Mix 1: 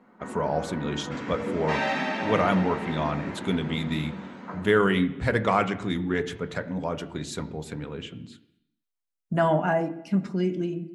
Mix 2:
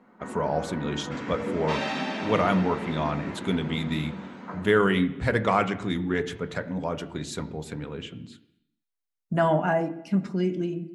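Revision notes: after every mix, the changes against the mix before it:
second sound: send off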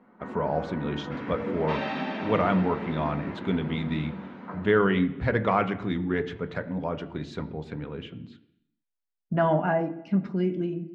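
master: add distance through air 240 m

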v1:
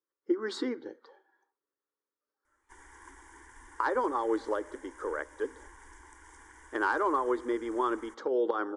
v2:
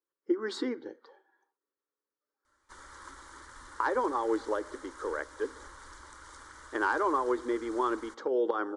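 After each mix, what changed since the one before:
background: remove static phaser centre 850 Hz, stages 8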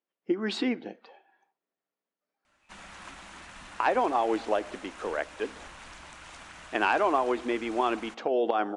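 master: remove static phaser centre 700 Hz, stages 6

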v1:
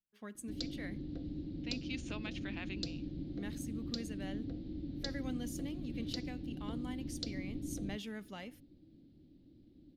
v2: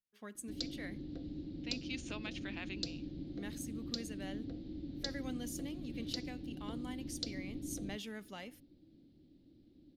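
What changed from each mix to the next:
master: add tone controls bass -4 dB, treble +3 dB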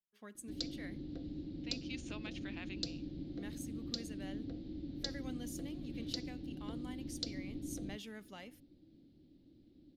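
speech -3.5 dB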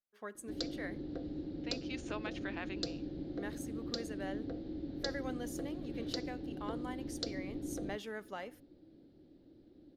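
master: add high-order bell 810 Hz +10 dB 2.6 oct

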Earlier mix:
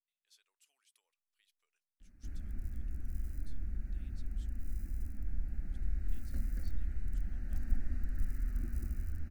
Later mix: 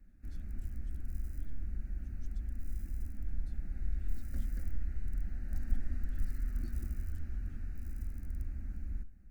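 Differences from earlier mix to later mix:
speech -5.5 dB; background: entry -2.00 s

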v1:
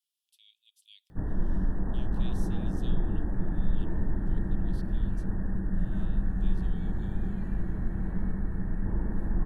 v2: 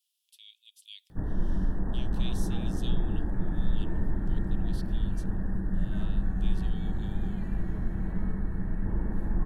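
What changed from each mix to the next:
speech +8.0 dB; second sound +4.0 dB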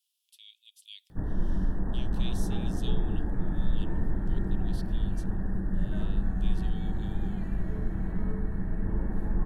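second sound: remove high-pass 760 Hz

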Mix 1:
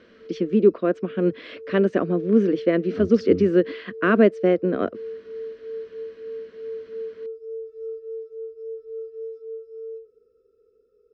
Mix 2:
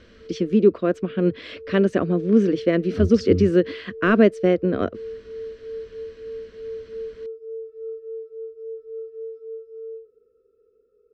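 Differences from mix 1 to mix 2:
speech: remove band-pass 200–2200 Hz; master: add tone controls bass -1 dB, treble -12 dB

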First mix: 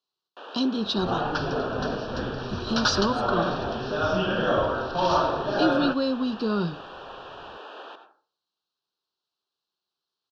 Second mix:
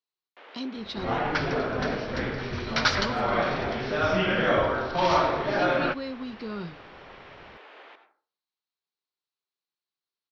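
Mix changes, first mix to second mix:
speech -9.5 dB; first sound -8.5 dB; master: remove Butterworth band-stop 2.1 kHz, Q 1.9

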